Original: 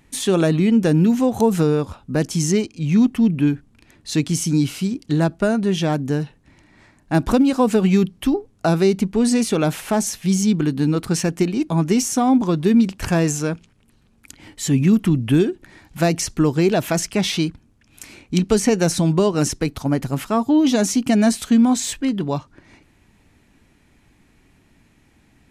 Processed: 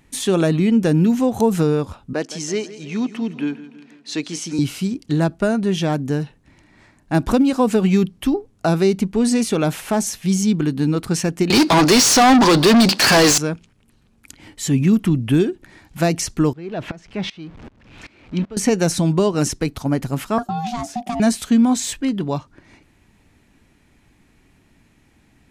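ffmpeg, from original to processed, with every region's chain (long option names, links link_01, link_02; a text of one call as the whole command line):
ffmpeg -i in.wav -filter_complex "[0:a]asettb=1/sr,asplit=3[link_01][link_02][link_03];[link_01]atrim=end=2.134[link_04];[link_02]atrim=start=2.13:end=4.59,asetpts=PTS-STARTPTS,afade=type=in:duration=0.004:curve=qsin,afade=type=out:start_time=2.456:duration=0.004:curve=qsin,highpass=350,lowpass=6100,aecho=1:1:164|328|492|656|820:0.168|0.0907|0.049|0.0264|0.0143,atrim=end_sample=108486[link_05];[link_03]atrim=start=4.586[link_06];[link_04][link_05]acrossfade=duration=0.004:curve1=hsin:curve2=qsin[link_07];[link_07][link_06]acrossfade=duration=0.004:curve1=qsin:curve2=hsin,asettb=1/sr,asplit=3[link_08][link_09][link_10];[link_08]atrim=end=11.504[link_11];[link_09]atrim=start=11.5:end=13.38,asetpts=PTS-STARTPTS,afade=type=in:duration=0.004:curve=qsin,afade=type=out:start_time=1.876:duration=0.004:curve=qsin,highpass=180,equalizer=frequency=4500:width_type=o:width=0.44:gain=15,asplit=2[link_12][link_13];[link_13]highpass=frequency=720:poles=1,volume=33dB,asoftclip=type=tanh:threshold=-5dB[link_14];[link_12][link_14]amix=inputs=2:normalize=0,lowpass=frequency=5000:poles=1,volume=-6dB[link_15];[link_10]atrim=start=13.376[link_16];[link_11][link_15]acrossfade=duration=0.004:curve1=hsin:curve2=qsin[link_17];[link_17][link_16]acrossfade=duration=0.004:curve1=qsin:curve2=hsin,asettb=1/sr,asplit=3[link_18][link_19][link_20];[link_18]atrim=end=16.534[link_21];[link_19]atrim=start=16.53:end=18.57,asetpts=PTS-STARTPTS,afade=type=in:duration=0.004:curve=qsin,afade=type=out:start_time=2.036:duration=0.004:curve=qsin,aeval=exprs='val(0)+0.5*0.0335*sgn(val(0))':channel_layout=same,lowpass=3100,aeval=exprs='val(0)*pow(10,-23*if(lt(mod(-2.6*n/s,1),2*abs(-2.6)/1000),1-mod(-2.6*n/s,1)/(2*abs(-2.6)/1000),(mod(-2.6*n/s,1)-2*abs(-2.6)/1000)/(1-2*abs(-2.6)/1000))/20)':channel_layout=same[link_22];[link_20]atrim=start=18.566[link_23];[link_21][link_22]acrossfade=duration=0.004:curve1=hsin:curve2=qsin[link_24];[link_24][link_23]acrossfade=duration=0.004:curve1=qsin:curve2=hsin,asettb=1/sr,asplit=3[link_25][link_26][link_27];[link_25]atrim=end=20.384[link_28];[link_26]atrim=start=20.38:end=21.2,asetpts=PTS-STARTPTS,afade=type=in:duration=0.004:curve=qsin,afade=type=out:start_time=0.816:duration=0.004:curve=qsin,agate=range=-33dB:threshold=-29dB:ratio=3:release=100:detection=peak,aeval=exprs='val(0)*sin(2*PI*480*n/s)':channel_layout=same,acrossover=split=530|2400[link_29][link_30][link_31];[link_29]acompressor=threshold=-27dB:ratio=4[link_32];[link_30]acompressor=threshold=-27dB:ratio=4[link_33];[link_31]acompressor=threshold=-38dB:ratio=4[link_34];[link_32][link_33][link_34]amix=inputs=3:normalize=0[link_35];[link_27]atrim=start=21.196[link_36];[link_28][link_35]acrossfade=duration=0.004:curve1=hsin:curve2=qsin[link_37];[link_37][link_36]acrossfade=duration=0.004:curve1=qsin:curve2=hsin" out.wav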